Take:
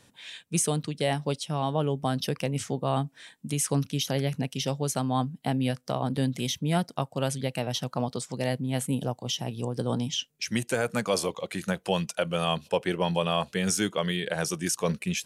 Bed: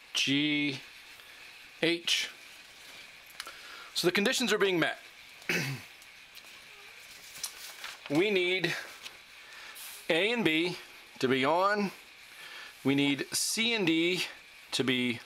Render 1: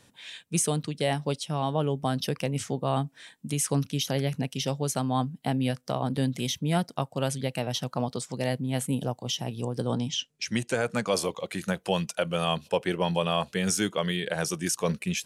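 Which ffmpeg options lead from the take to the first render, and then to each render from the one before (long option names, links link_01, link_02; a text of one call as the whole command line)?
ffmpeg -i in.wav -filter_complex "[0:a]asettb=1/sr,asplit=3[link_01][link_02][link_03];[link_01]atrim=end=9.874[link_04];[link_02]atrim=start=9.87:end=11.14,asetpts=PTS-STARTPTS,afade=type=in:duration=0.004:curve=qsin,afade=type=out:start_time=1.266:duration=0.004:curve=qsin,lowpass=8600[link_05];[link_03]atrim=start=11.136[link_06];[link_04][link_05]acrossfade=duration=0.004:curve1=hsin:curve2=qsin[link_07];[link_07][link_06]acrossfade=duration=0.004:curve1=qsin:curve2=hsin" out.wav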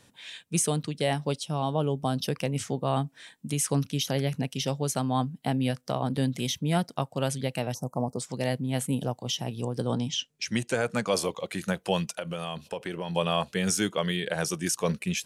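ffmpeg -i in.wav -filter_complex "[0:a]asettb=1/sr,asplit=3[link_01][link_02][link_03];[link_01]atrim=end=1.404[link_04];[link_02]atrim=start=1.4:end=2.28,asetpts=PTS-STARTPTS,afade=type=in:duration=0.004:curve=qsin,afade=type=out:start_time=0.876:duration=0.004:curve=qsin,equalizer=frequency=1900:width=2.5:gain=-9[link_05];[link_03]atrim=start=2.276[link_06];[link_04][link_05]acrossfade=duration=0.004:curve1=hsin:curve2=qsin[link_07];[link_07][link_06]acrossfade=duration=0.004:curve1=qsin:curve2=hsin,asettb=1/sr,asplit=3[link_08][link_09][link_10];[link_08]atrim=end=7.744[link_11];[link_09]atrim=start=7.74:end=8.19,asetpts=PTS-STARTPTS,afade=type=in:duration=0.004:curve=qsin,afade=type=out:start_time=0.446:duration=0.004:curve=qsin,asuperstop=centerf=2600:order=8:qfactor=0.5[link_12];[link_10]atrim=start=8.186[link_13];[link_11][link_12]acrossfade=duration=0.004:curve1=hsin:curve2=qsin[link_14];[link_14][link_13]acrossfade=duration=0.004:curve1=qsin:curve2=hsin,asettb=1/sr,asplit=3[link_15][link_16][link_17];[link_15]atrim=end=12.124[link_18];[link_16]atrim=start=12.12:end=13.16,asetpts=PTS-STARTPTS,afade=type=in:duration=0.004:curve=qsin,afade=type=out:start_time=1.036:duration=0.004:curve=qsin,acompressor=threshold=-29dB:ratio=6:attack=3.2:release=140:knee=1:detection=peak[link_19];[link_17]atrim=start=13.156[link_20];[link_18][link_19]acrossfade=duration=0.004:curve1=hsin:curve2=qsin[link_21];[link_21][link_20]acrossfade=duration=0.004:curve1=qsin:curve2=hsin" out.wav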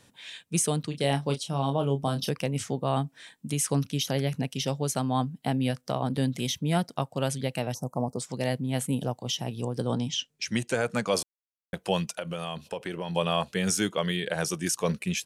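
ffmpeg -i in.wav -filter_complex "[0:a]asplit=3[link_01][link_02][link_03];[link_01]afade=type=out:start_time=0.91:duration=0.02[link_04];[link_02]asplit=2[link_05][link_06];[link_06]adelay=29,volume=-7.5dB[link_07];[link_05][link_07]amix=inputs=2:normalize=0,afade=type=in:start_time=0.91:duration=0.02,afade=type=out:start_time=2.3:duration=0.02[link_08];[link_03]afade=type=in:start_time=2.3:duration=0.02[link_09];[link_04][link_08][link_09]amix=inputs=3:normalize=0,asplit=3[link_10][link_11][link_12];[link_10]atrim=end=11.23,asetpts=PTS-STARTPTS,afade=type=out:start_time=11.226:duration=0.004:curve=hsin[link_13];[link_11]atrim=start=11.23:end=11.73,asetpts=PTS-STARTPTS,volume=0[link_14];[link_12]atrim=start=11.73,asetpts=PTS-STARTPTS,afade=type=in:duration=0.004:curve=hsin[link_15];[link_13][link_14][link_15]concat=n=3:v=0:a=1" out.wav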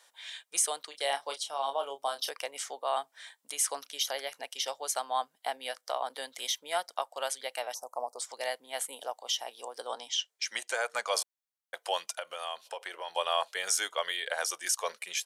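ffmpeg -i in.wav -af "highpass=frequency=630:width=0.5412,highpass=frequency=630:width=1.3066,bandreject=frequency=2600:width=9.5" out.wav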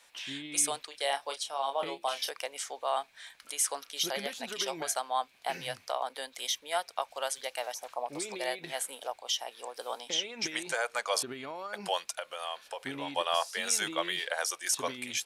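ffmpeg -i in.wav -i bed.wav -filter_complex "[1:a]volume=-14dB[link_01];[0:a][link_01]amix=inputs=2:normalize=0" out.wav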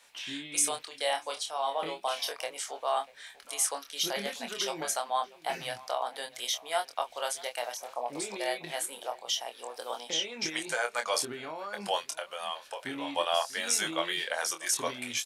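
ffmpeg -i in.wav -filter_complex "[0:a]asplit=2[link_01][link_02];[link_02]adelay=25,volume=-6dB[link_03];[link_01][link_03]amix=inputs=2:normalize=0,asplit=2[link_04][link_05];[link_05]adelay=641.4,volume=-20dB,highshelf=frequency=4000:gain=-14.4[link_06];[link_04][link_06]amix=inputs=2:normalize=0" out.wav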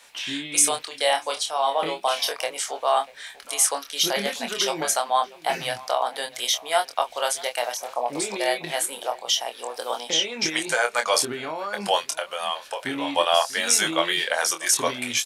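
ffmpeg -i in.wav -af "volume=8.5dB" out.wav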